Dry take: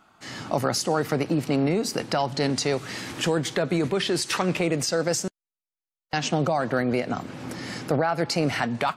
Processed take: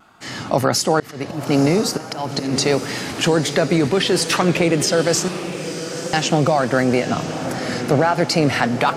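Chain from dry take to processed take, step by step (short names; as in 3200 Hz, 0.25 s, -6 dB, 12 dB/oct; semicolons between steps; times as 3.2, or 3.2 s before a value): 1–2.53 auto swell 0.23 s; diffused feedback echo 0.949 s, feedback 56%, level -10.5 dB; vibrato 1.5 Hz 43 cents; gain +7 dB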